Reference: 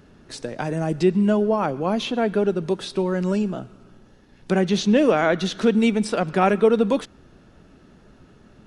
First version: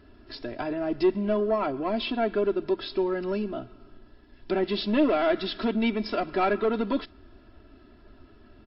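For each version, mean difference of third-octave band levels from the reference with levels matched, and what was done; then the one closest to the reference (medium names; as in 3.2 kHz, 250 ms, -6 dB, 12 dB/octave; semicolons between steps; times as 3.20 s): 4.0 dB: saturation -13 dBFS, distortion -16 dB; bass shelf 87 Hz +4 dB; comb 3 ms, depth 87%; trim -5 dB; MP3 32 kbps 12 kHz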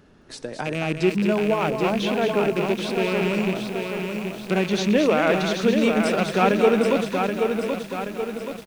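9.5 dB: rattle on loud lows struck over -27 dBFS, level -18 dBFS; tone controls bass -3 dB, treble -1 dB; delay 220 ms -7 dB; bit-crushed delay 778 ms, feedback 55%, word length 7-bit, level -5 dB; trim -1.5 dB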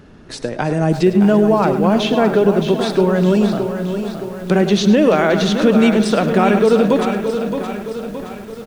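7.0 dB: treble shelf 4.9 kHz -4.5 dB; multi-tap echo 100/105/338/659 ms -18.5/-14/-17/-18 dB; loudness maximiser +11 dB; bit-crushed delay 619 ms, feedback 55%, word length 6-bit, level -8 dB; trim -3.5 dB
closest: first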